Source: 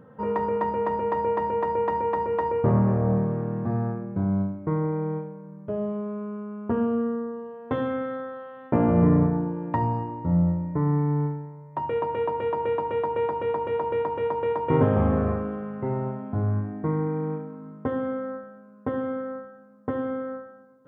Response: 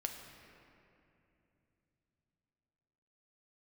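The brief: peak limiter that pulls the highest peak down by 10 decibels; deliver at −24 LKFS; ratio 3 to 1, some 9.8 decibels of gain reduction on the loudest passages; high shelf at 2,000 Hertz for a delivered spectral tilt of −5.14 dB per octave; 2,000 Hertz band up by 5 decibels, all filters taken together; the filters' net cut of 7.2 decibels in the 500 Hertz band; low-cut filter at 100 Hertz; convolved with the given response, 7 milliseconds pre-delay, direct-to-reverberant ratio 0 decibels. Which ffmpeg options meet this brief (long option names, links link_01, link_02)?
-filter_complex "[0:a]highpass=100,equalizer=frequency=500:width_type=o:gain=-8,highshelf=frequency=2000:gain=-3.5,equalizer=frequency=2000:width_type=o:gain=8.5,acompressor=threshold=-31dB:ratio=3,alimiter=level_in=2.5dB:limit=-24dB:level=0:latency=1,volume=-2.5dB,asplit=2[link_01][link_02];[1:a]atrim=start_sample=2205,adelay=7[link_03];[link_02][link_03]afir=irnorm=-1:irlink=0,volume=0dB[link_04];[link_01][link_04]amix=inputs=2:normalize=0,volume=9.5dB"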